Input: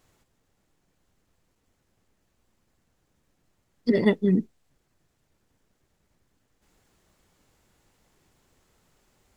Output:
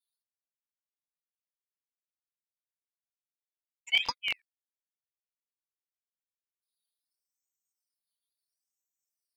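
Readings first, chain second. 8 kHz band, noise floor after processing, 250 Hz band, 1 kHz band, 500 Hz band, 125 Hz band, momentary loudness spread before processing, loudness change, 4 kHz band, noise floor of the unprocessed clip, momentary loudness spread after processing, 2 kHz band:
n/a, under -85 dBFS, -39.0 dB, +0.5 dB, -30.5 dB, under -30 dB, 6 LU, -5.5 dB, +13.5 dB, -73 dBFS, 8 LU, +4.5 dB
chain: per-bin expansion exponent 3; LFO high-pass square 3.7 Hz 290–1700 Hz; crackling interface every 0.11 s, samples 1024, repeat, from 0.96; ring modulator with a swept carrier 1800 Hz, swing 65%, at 0.73 Hz

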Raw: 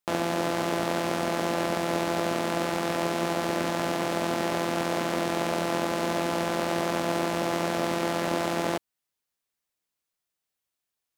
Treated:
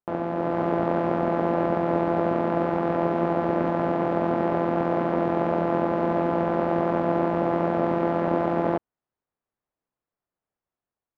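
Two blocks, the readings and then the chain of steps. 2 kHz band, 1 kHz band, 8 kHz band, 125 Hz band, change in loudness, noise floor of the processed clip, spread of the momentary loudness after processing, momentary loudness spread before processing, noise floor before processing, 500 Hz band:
-4.0 dB, +3.0 dB, under -25 dB, +5.0 dB, +3.5 dB, under -85 dBFS, 1 LU, 1 LU, -85 dBFS, +4.5 dB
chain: LPF 1100 Hz 12 dB/oct; AGC gain up to 5 dB

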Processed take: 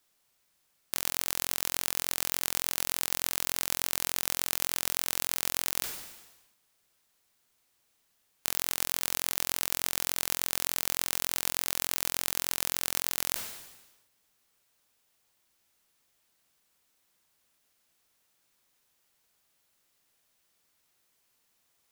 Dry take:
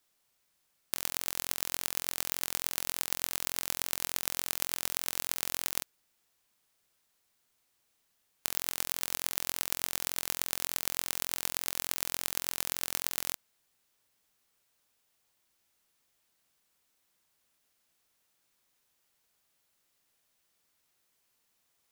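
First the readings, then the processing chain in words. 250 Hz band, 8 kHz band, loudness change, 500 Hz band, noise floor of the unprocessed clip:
+3.0 dB, +3.0 dB, +3.0 dB, +3.0 dB, -76 dBFS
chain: in parallel at -1 dB: limiter -11 dBFS, peak gain reduction 9.5 dB; on the sum: sustainer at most 52 dB/s; gain -3 dB

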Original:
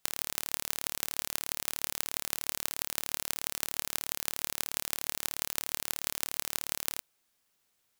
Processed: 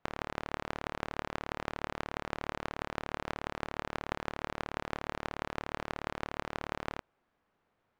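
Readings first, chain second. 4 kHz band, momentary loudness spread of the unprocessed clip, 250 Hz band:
-10.0 dB, 1 LU, +8.5 dB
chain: LPF 1300 Hz 12 dB/oct; gain +8.5 dB

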